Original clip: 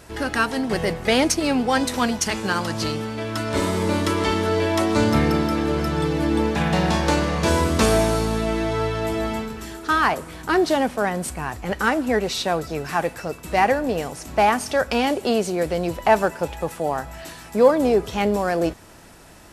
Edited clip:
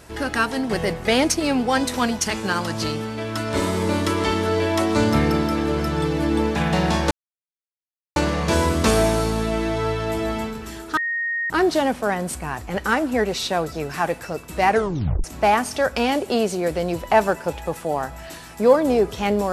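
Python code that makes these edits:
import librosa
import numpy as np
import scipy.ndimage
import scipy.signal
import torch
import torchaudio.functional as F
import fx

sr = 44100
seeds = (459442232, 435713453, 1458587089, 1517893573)

y = fx.edit(x, sr, fx.insert_silence(at_s=7.11, length_s=1.05),
    fx.bleep(start_s=9.92, length_s=0.53, hz=1860.0, db=-21.5),
    fx.tape_stop(start_s=13.64, length_s=0.55), tone=tone)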